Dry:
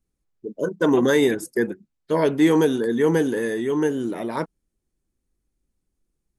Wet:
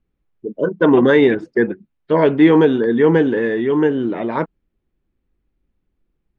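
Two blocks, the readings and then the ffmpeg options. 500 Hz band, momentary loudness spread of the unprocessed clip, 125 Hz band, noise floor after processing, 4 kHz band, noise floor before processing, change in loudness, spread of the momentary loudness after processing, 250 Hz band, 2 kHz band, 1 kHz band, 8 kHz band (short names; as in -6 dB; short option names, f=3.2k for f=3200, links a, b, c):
+6.0 dB, 13 LU, +6.0 dB, -73 dBFS, +1.5 dB, -79 dBFS, +6.0 dB, 13 LU, +6.0 dB, +6.0 dB, +6.0 dB, under -20 dB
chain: -af "lowpass=f=3.2k:w=0.5412,lowpass=f=3.2k:w=1.3066,volume=6dB"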